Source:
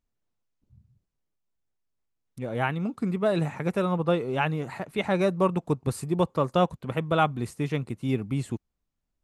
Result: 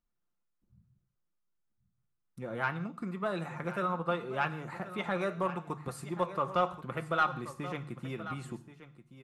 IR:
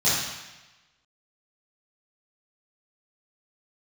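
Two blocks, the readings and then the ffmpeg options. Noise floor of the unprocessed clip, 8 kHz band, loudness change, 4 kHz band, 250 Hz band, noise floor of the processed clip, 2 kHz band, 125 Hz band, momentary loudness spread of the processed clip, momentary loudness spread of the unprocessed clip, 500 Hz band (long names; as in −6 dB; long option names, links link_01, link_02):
−81 dBFS, −8.5 dB, −7.5 dB, −7.5 dB, −10.5 dB, −81 dBFS, −3.0 dB, −11.0 dB, 10 LU, 7 LU, −9.0 dB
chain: -filter_complex "[0:a]equalizer=frequency=1300:width=1.5:gain=10,bandreject=frequency=50:width_type=h:width=6,bandreject=frequency=100:width_type=h:width=6,bandreject=frequency=150:width_type=h:width=6,aecho=1:1:5.7:0.38,acrossover=split=470[link_01][link_02];[link_01]acompressor=threshold=-33dB:ratio=6[link_03];[link_02]flanger=delay=3.9:depth=7.5:regen=81:speed=0.68:shape=triangular[link_04];[link_03][link_04]amix=inputs=2:normalize=0,asoftclip=type=tanh:threshold=-12dB,aecho=1:1:1079:0.2,asplit=2[link_05][link_06];[1:a]atrim=start_sample=2205,afade=type=out:start_time=0.23:duration=0.01,atrim=end_sample=10584[link_07];[link_06][link_07]afir=irnorm=-1:irlink=0,volume=-28.5dB[link_08];[link_05][link_08]amix=inputs=2:normalize=0,volume=-5dB"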